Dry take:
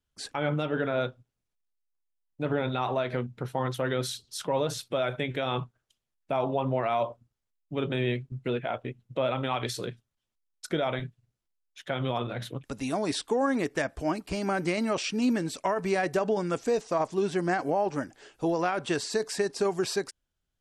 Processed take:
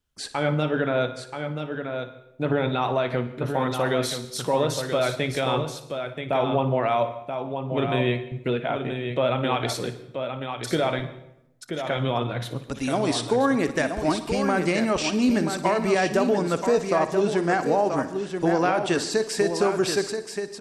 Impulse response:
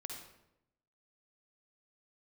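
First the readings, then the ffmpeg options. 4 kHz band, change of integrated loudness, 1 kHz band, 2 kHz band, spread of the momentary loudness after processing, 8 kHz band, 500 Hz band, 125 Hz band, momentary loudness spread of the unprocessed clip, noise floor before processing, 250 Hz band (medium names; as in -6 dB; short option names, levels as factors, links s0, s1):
+5.5 dB, +5.0 dB, +5.5 dB, +5.5 dB, 9 LU, +5.5 dB, +5.5 dB, +5.5 dB, 8 LU, -83 dBFS, +5.5 dB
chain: -filter_complex "[0:a]aecho=1:1:980:0.447,asplit=2[s0][s1];[1:a]atrim=start_sample=2205,adelay=59[s2];[s1][s2]afir=irnorm=-1:irlink=0,volume=0.355[s3];[s0][s3]amix=inputs=2:normalize=0,volume=1.68"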